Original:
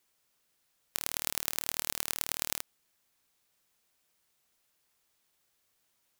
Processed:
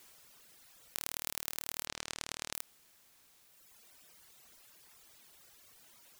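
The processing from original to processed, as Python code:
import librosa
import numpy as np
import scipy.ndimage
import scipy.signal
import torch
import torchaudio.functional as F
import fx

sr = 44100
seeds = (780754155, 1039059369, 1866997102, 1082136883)

y = fx.lowpass(x, sr, hz=7700.0, slope=12, at=(1.87, 2.53))
y = fx.dereverb_blind(y, sr, rt60_s=1.6)
y = fx.env_flatten(y, sr, amount_pct=50)
y = F.gain(torch.from_numpy(y), -6.0).numpy()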